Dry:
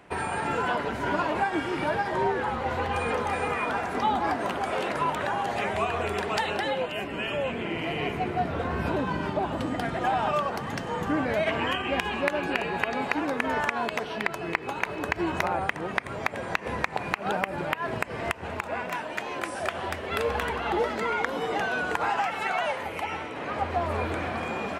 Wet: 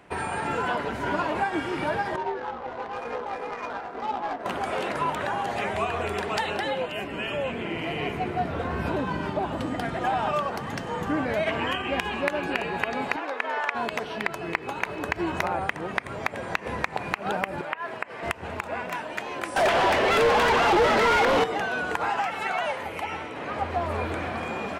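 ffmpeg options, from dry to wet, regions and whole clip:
-filter_complex "[0:a]asettb=1/sr,asplit=3[a][b][c];[a]atrim=end=2.164[d];[b]atrim=start=2.16:end=4.46,asetpts=PTS-STARTPTS,afade=t=in:d=0.004:c=qsin,afade=t=out:st=2.296:d=0.004:c=qsin,bass=f=250:g=-13,treble=f=4k:g=13,flanger=delay=16:depth=2.3:speed=2,adynamicsmooth=sensitivity=1.5:basefreq=880[e];[c]atrim=start=4.456[f];[d][e]acrossfade=d=0.004:c1=hsin:c2=qsin[g];[g][f]acrossfade=d=0.004:c1=qsin:c2=hsin,asettb=1/sr,asplit=3[h][i][j];[h]atrim=end=13.164[k];[i]atrim=start=13.16:end=13.75,asetpts=PTS-STARTPTS,afade=t=in:d=0.004:c=qsin,afade=t=out:st=0.586:d=0.004:c=qsin,highpass=280,acrossover=split=410 5300:gain=0.178 1 0.251[l][m][n];[l][m][n]amix=inputs=3:normalize=0[o];[j]atrim=start=13.746[p];[k][o]acrossfade=d=0.004:c1=hsin:c2=qsin[q];[q][p]acrossfade=d=0.004:c1=qsin:c2=hsin,asettb=1/sr,asplit=3[r][s][t];[r]atrim=end=17.614[u];[s]atrim=start=17.61:end=18.23,asetpts=PTS-STARTPTS,afade=t=in:d=0.004:c=qsin,afade=t=out:st=0.616:d=0.004:c=qsin,acrossover=split=2800[v][w];[w]acompressor=threshold=-53dB:ratio=4:attack=1:release=60[x];[v][x]amix=inputs=2:normalize=0,highpass=f=700:p=1[y];[t]atrim=start=18.226[z];[u][y]acrossfade=d=0.004:c1=hsin:c2=qsin[aa];[aa][z]acrossfade=d=0.004:c1=qsin:c2=hsin,asettb=1/sr,asplit=3[ab][ac][ad];[ab]atrim=end=19.564[ae];[ac]atrim=start=19.56:end=21.44,asetpts=PTS-STARTPTS,afade=t=in:d=0.004:c=qsin,afade=t=out:st=1.876:d=0.004:c=qsin,equalizer=f=1.5k:t=o:w=1.4:g=-3.5,asplit=2[af][ag];[ag]highpass=f=720:p=1,volume=31dB,asoftclip=type=tanh:threshold=-12.5dB[ah];[af][ah]amix=inputs=2:normalize=0,lowpass=f=2.2k:p=1,volume=-6dB[ai];[ad]atrim=start=21.436[aj];[ae][ai]acrossfade=d=0.004:c1=hsin:c2=qsin[ak];[ak][aj]acrossfade=d=0.004:c1=qsin:c2=hsin"

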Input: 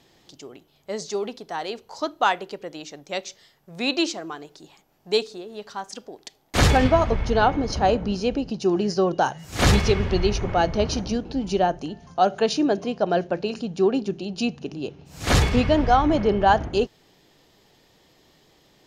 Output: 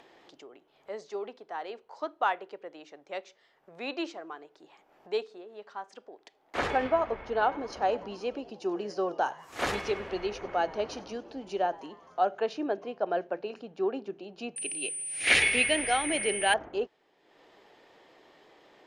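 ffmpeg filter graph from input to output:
-filter_complex "[0:a]asettb=1/sr,asplit=3[a][b][c];[a]atrim=end=7.424[d];[b]atrim=start=7.42:end=12.21,asetpts=PTS-STARTPTS,afade=t=in:d=0.004:c=qsin,afade=t=out:st=4.786:d=0.004:c=qsin,aemphasis=mode=production:type=50fm,asplit=6[e][f][g][h][i][j];[f]adelay=96,afreqshift=110,volume=-21.5dB[k];[g]adelay=192,afreqshift=220,volume=-25.9dB[l];[h]adelay=288,afreqshift=330,volume=-30.4dB[m];[i]adelay=384,afreqshift=440,volume=-34.8dB[n];[j]adelay=480,afreqshift=550,volume=-39.2dB[o];[e][k][l][m][n][o]amix=inputs=6:normalize=0,atrim=end_sample=211239[p];[c]atrim=start=12.206[q];[d][p]acrossfade=d=0.004:c1=hsin:c2=qsin[r];[r][q]acrossfade=d=0.004:c1=qsin:c2=hsin,asettb=1/sr,asplit=3[s][t][u];[s]atrim=end=14.564[v];[t]atrim=start=14.56:end=16.54,asetpts=PTS-STARTPTS,afade=t=in:d=0.004:c=qsin,afade=t=out:st=1.976:d=0.004:c=qsin,aeval=exprs='val(0)+0.0794*sin(2*PI*9300*n/s)':c=same,highshelf=f=1.6k:t=q:w=3:g=12[w];[u]atrim=start=16.536[x];[v][w]acrossfade=d=0.004:c1=hsin:c2=qsin[y];[y][x]acrossfade=d=0.004:c1=qsin:c2=hsin,lowpass=11k,acrossover=split=310 2700:gain=0.1 1 0.158[z][aa][ab];[z][aa][ab]amix=inputs=3:normalize=0,acompressor=mode=upward:threshold=-40dB:ratio=2.5,volume=-6.5dB"

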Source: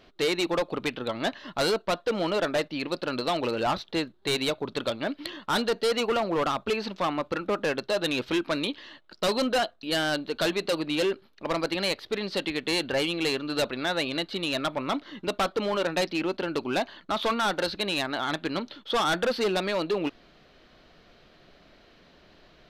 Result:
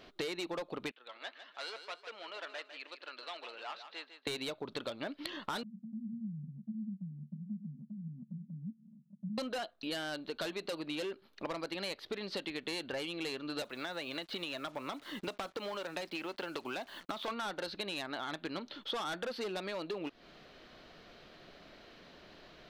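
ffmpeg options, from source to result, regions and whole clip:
-filter_complex "[0:a]asettb=1/sr,asplit=3[a][b][c];[a]atrim=end=0.914[d];[b]atrim=start=0.91:end=4.27,asetpts=PTS-STARTPTS,afade=t=in:d=0.004:c=qsin,afade=t=out:st=3.356:d=0.004:c=qsin,highpass=310,lowpass=2.4k,aderivative,aecho=1:1:152|304|456:0.299|0.0955|0.0306,atrim=end_sample=148176[e];[c]atrim=start=4.266[f];[d][e]acrossfade=d=0.004:c1=hsin:c2=qsin[g];[g][f]acrossfade=d=0.004:c1=qsin:c2=hsin,asettb=1/sr,asplit=3[h][i][j];[h]atrim=end=5.634[k];[i]atrim=start=5.63:end=9.38,asetpts=PTS-STARTPTS,afade=t=in:d=0.004:c=qsin,afade=t=out:st=3.746:d=0.004:c=qsin,asuperpass=centerf=180:order=12:qfactor=2.1,acompressor=mode=upward:threshold=-42dB:ratio=2.5:attack=3.2:release=140:knee=2.83:detection=peak[l];[j]atrim=start=9.376[m];[k][l]acrossfade=d=0.004:c1=hsin:c2=qsin[n];[n][m]acrossfade=d=0.004:c1=qsin:c2=hsin,asettb=1/sr,asplit=3[o][p][q];[o]atrim=end=13.624[r];[p]atrim=start=13.62:end=17.28,asetpts=PTS-STARTPTS,afade=t=in:d=0.004:c=qsin,afade=t=out:st=3.656:d=0.004:c=qsin,acrossover=split=540|3600[s][t][u];[s]acompressor=threshold=-39dB:ratio=4[v];[t]acompressor=threshold=-33dB:ratio=4[w];[u]acompressor=threshold=-45dB:ratio=4[x];[v][w][x]amix=inputs=3:normalize=0,acrusher=bits=8:mix=0:aa=0.5[y];[q]atrim=start=17.276[z];[r][y]acrossfade=d=0.004:c1=hsin:c2=qsin[aa];[aa][z]acrossfade=d=0.004:c1=qsin:c2=hsin,lowshelf=f=120:g=-6.5,acompressor=threshold=-37dB:ratio=12,volume=1dB"

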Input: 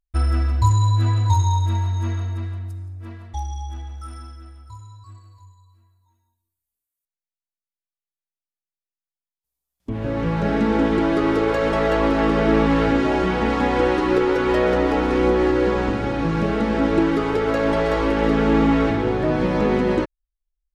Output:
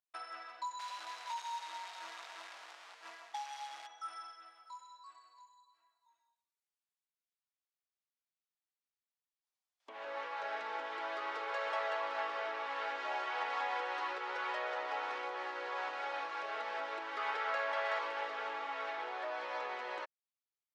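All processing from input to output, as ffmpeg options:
-filter_complex "[0:a]asettb=1/sr,asplit=3[a][b][c];[a]atrim=end=0.794[d];[b]atrim=start=0.79:end=3.87,asetpts=PTS-STARTPTS,afade=t=in:d=0.004:c=qsin,afade=t=out:st=3.076:d=0.004:c=qsin,lowshelf=f=70:g=5,adynamicsmooth=sensitivity=7:basefreq=5.6k,acrusher=bits=4:mode=log:mix=0:aa=0.000001[e];[c]atrim=start=3.866[f];[d][e]acrossfade=d=0.004:c1=hsin:c2=qsin[g];[g][f]acrossfade=d=0.004:c1=qsin:c2=hsin,asettb=1/sr,asplit=3[h][i][j];[h]atrim=end=17.174[k];[i]atrim=start=17.17:end=17.99,asetpts=PTS-STARTPTS,afade=t=in:d=0.004:c=qsin,afade=t=out:st=0.816:d=0.004:c=qsin,equalizer=f=1.8k:w=0.63:g=4.5,asplit=2[l][m];[m]adelay=47,volume=-11dB[n];[l][n]amix=inputs=2:normalize=0,atrim=end_sample=36162[o];[j]atrim=start=17.986[p];[k][o]acrossfade=d=0.004:c1=hsin:c2=qsin[q];[q][p]acrossfade=d=0.004:c1=qsin:c2=hsin,lowpass=5.5k,acompressor=threshold=-26dB:ratio=6,highpass=f=690:w=0.5412,highpass=f=690:w=1.3066,volume=-2.5dB"

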